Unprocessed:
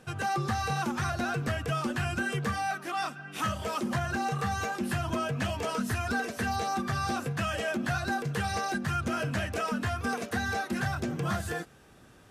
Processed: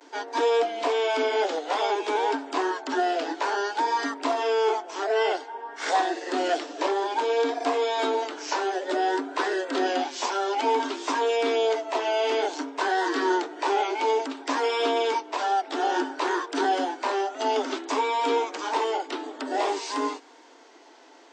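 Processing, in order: speed mistake 78 rpm record played at 45 rpm; vibrato 0.56 Hz 52 cents; steep high-pass 270 Hz 96 dB/oct; gain +8 dB

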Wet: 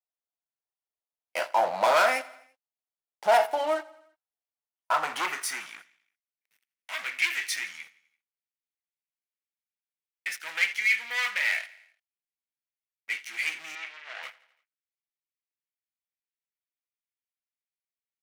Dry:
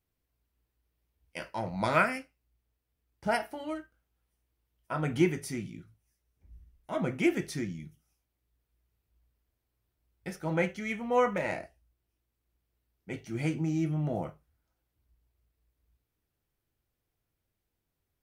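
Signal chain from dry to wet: sample leveller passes 5; 13.75–14.23 BPF 540–4200 Hz; feedback echo 84 ms, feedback 57%, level -20.5 dB; high-pass sweep 700 Hz -> 2100 Hz, 4.56–6.22; gain -8 dB

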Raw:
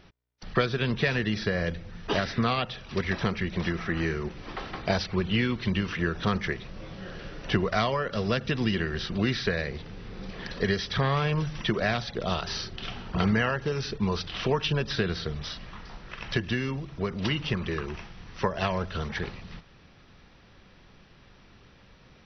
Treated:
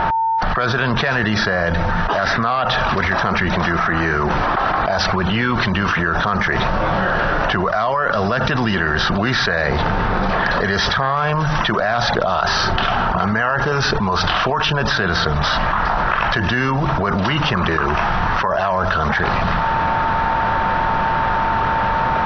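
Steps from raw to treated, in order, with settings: low-pass opened by the level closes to 2800 Hz, open at -21.5 dBFS; band shelf 1000 Hz +12.5 dB; whine 900 Hz -48 dBFS; fast leveller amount 100%; gain -5.5 dB

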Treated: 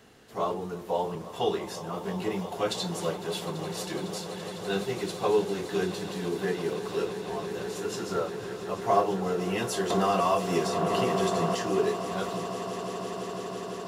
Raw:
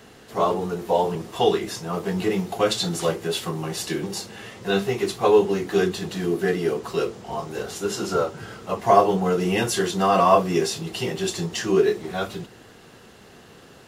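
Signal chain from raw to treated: swelling echo 0.168 s, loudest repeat 8, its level -16 dB; 9.9–11.55 three-band squash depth 100%; gain -8 dB

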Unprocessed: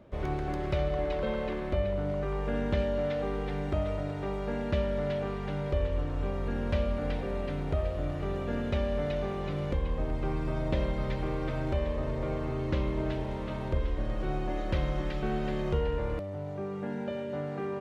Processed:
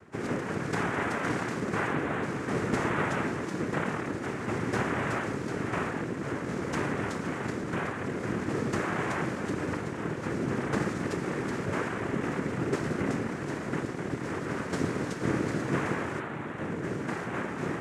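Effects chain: octaver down 1 oct, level +3 dB; noise vocoder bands 3

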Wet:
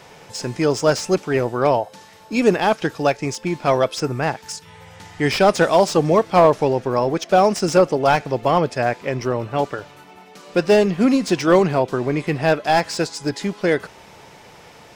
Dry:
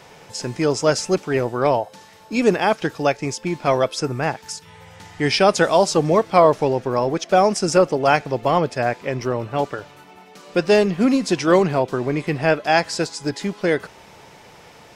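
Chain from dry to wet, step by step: slew limiter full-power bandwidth 310 Hz; gain +1 dB

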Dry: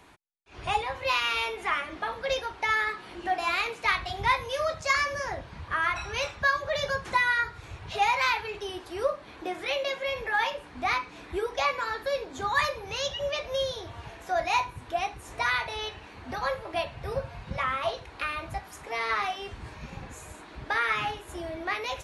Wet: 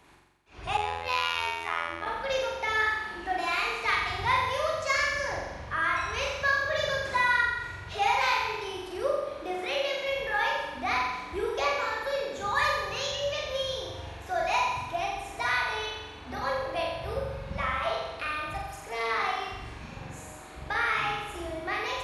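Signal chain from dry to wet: on a send: flutter echo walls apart 7.5 m, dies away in 1.1 s; 0.77–2.06 on the sum: robotiser 83.7 Hz; gain -3.5 dB

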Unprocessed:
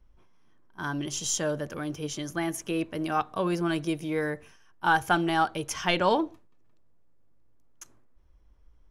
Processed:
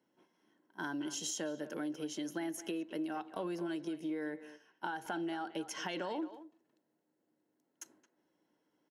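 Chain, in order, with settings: bell 310 Hz +7 dB 0.23 oct; limiter -18.5 dBFS, peak gain reduction 8.5 dB; HPF 180 Hz 24 dB/oct; notch comb 1200 Hz; compressor 6:1, threshold -34 dBFS, peak gain reduction 11 dB; 3.78–5.85 high shelf 8500 Hz -7.5 dB; speakerphone echo 0.22 s, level -13 dB; gain -2 dB

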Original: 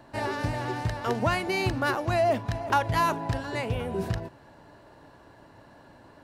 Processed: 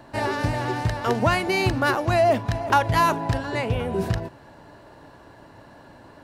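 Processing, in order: 3.37–3.92 high shelf 4700 Hz -> 8600 Hz -5.5 dB; gain +5 dB

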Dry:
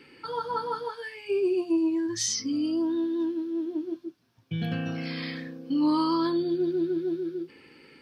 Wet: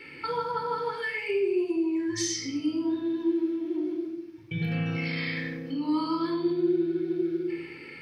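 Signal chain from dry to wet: bell 2200 Hz +10.5 dB 0.51 oct; compressor, threshold -32 dBFS, peak gain reduction 11 dB; shoebox room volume 3100 m³, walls furnished, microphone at 4.3 m

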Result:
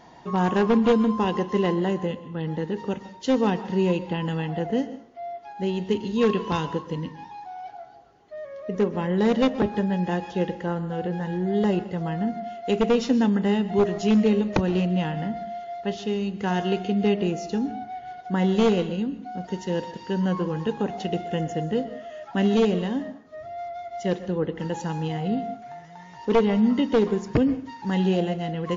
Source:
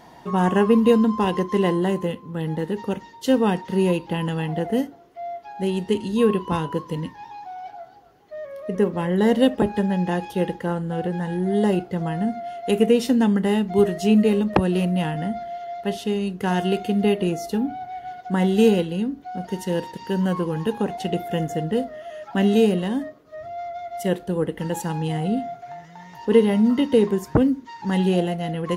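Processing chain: one-sided fold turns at -10.5 dBFS; 6.21–6.67 high shelf 2500 Hz +9 dB; plate-style reverb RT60 0.52 s, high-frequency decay 0.85×, pre-delay 0.11 s, DRR 14 dB; gain -2.5 dB; WMA 64 kbps 16000 Hz

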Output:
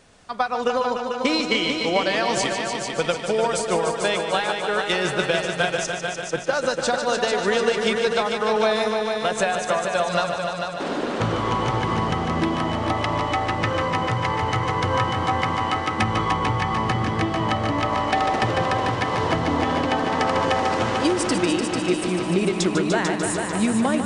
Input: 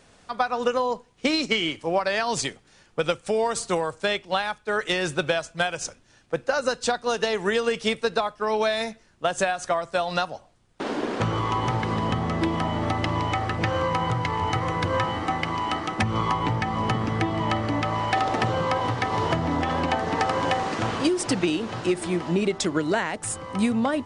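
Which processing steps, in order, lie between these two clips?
multi-head echo 0.148 s, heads all three, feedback 58%, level -9 dB; gain +1 dB

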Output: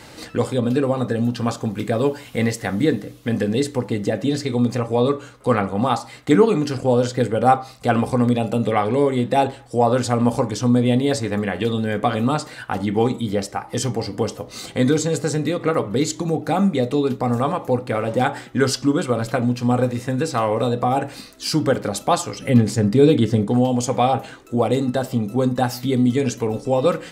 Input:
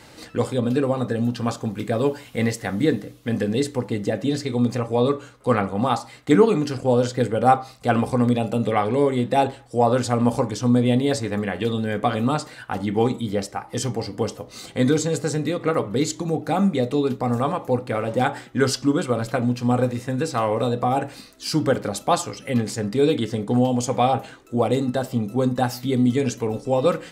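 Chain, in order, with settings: 22.41–23.48 low shelf 360 Hz +9 dB; in parallel at -3 dB: compressor, threshold -28 dBFS, peak gain reduction 18 dB

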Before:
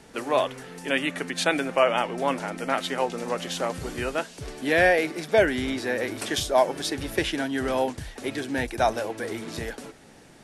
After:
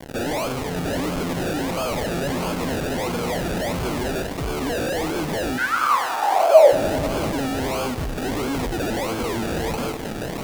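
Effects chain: recorder AGC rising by 5.4 dB/s; decimation with a swept rate 33×, swing 60% 1.5 Hz; fuzz box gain 45 dB, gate -49 dBFS; 5.57–6.71 resonant high-pass 1600 Hz -> 540 Hz, resonance Q 13; lo-fi delay 98 ms, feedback 80%, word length 5-bit, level -14 dB; gain -10.5 dB

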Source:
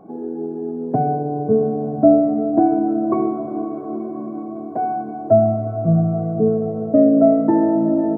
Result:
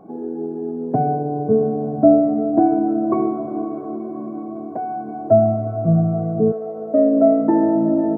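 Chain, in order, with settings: 3.84–5.16 compressor, threshold -23 dBFS, peak gain reduction 5.5 dB; 6.51–7.61 HPF 610 Hz -> 140 Hz 12 dB/oct

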